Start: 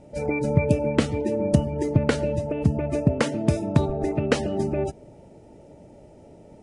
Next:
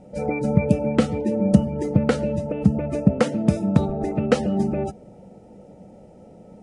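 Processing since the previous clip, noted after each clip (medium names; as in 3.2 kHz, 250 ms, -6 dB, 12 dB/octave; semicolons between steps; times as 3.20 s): small resonant body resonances 200/500/740/1300 Hz, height 13 dB, ringing for 85 ms; trim -2 dB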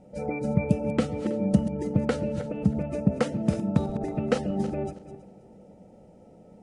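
backward echo that repeats 161 ms, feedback 44%, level -11.5 dB; trim -6 dB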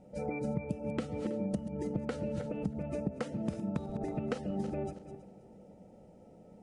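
compression 6:1, threshold -27 dBFS, peak gain reduction 13 dB; trim -4 dB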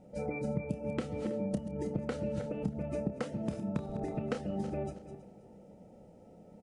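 doubling 29 ms -10.5 dB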